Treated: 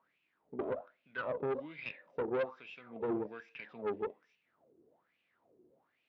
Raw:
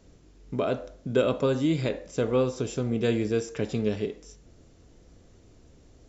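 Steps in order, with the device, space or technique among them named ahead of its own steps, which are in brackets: wah-wah guitar rig (wah 1.2 Hz 360–2600 Hz, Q 7.8; tube stage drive 33 dB, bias 0.45; speaker cabinet 96–4200 Hz, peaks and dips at 150 Hz +5 dB, 220 Hz +4 dB, 430 Hz -3 dB, 940 Hz +3 dB); gain +4.5 dB

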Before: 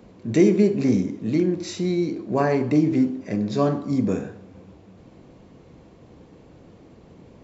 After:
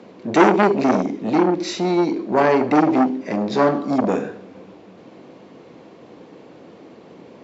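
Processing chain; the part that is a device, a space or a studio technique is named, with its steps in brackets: public-address speaker with an overloaded transformer (core saturation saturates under 1100 Hz; BPF 260–5300 Hz); gain +8.5 dB

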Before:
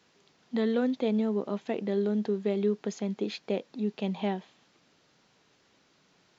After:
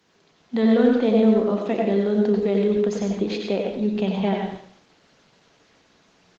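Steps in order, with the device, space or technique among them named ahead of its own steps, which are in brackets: 0.59–2.34 doubler 36 ms -12 dB; speakerphone in a meeting room (reverb RT60 0.55 s, pre-delay 83 ms, DRR 2 dB; speakerphone echo 90 ms, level -7 dB; AGC gain up to 3.5 dB; gain +3 dB; Opus 20 kbps 48000 Hz)

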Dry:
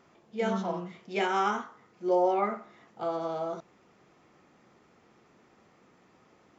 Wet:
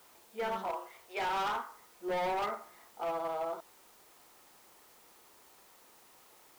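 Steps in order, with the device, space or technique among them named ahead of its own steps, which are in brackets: 0.68–1.29 HPF 400 Hz 24 dB/oct; drive-through speaker (BPF 430–3200 Hz; bell 930 Hz +6 dB 0.32 oct; hard clip -28.5 dBFS, distortion -8 dB; white noise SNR 23 dB); gain -2 dB

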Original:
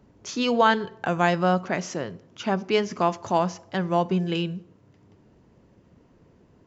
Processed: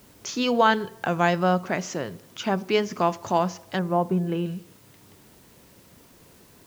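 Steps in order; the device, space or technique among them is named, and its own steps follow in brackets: 3.79–4.46 LPF 1300 Hz 12 dB/oct; noise-reduction cassette on a plain deck (mismatched tape noise reduction encoder only; wow and flutter 18 cents; white noise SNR 31 dB)

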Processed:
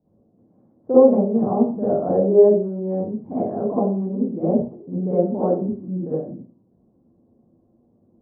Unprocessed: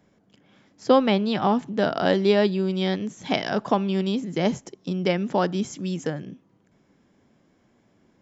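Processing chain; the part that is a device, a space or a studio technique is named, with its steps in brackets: next room (LPF 680 Hz 24 dB/oct; reverb RT60 0.40 s, pre-delay 41 ms, DRR -11 dB); dynamic EQ 500 Hz, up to +4 dB, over -19 dBFS, Q 1.8; gain -8 dB

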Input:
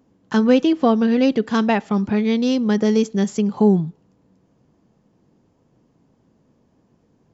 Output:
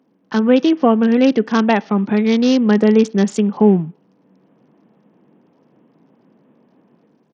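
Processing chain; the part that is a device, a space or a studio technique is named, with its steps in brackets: Bluetooth headset (HPF 170 Hz 24 dB/oct; AGC gain up to 7.5 dB; downsampling 16000 Hz; SBC 64 kbps 48000 Hz)

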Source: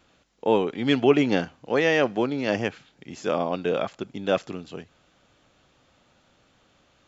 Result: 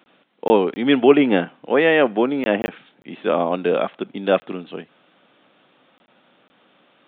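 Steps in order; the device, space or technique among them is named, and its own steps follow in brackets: call with lost packets (HPF 180 Hz 24 dB/oct; downsampling 8000 Hz; packet loss); dynamic EQ 4400 Hz, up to -4 dB, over -43 dBFS, Q 0.95; gain +6 dB

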